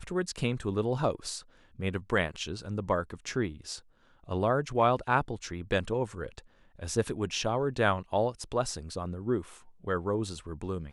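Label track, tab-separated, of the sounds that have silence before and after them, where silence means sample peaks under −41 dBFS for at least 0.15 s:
1.790000	3.790000	sound
4.280000	6.390000	sound
6.790000	9.540000	sound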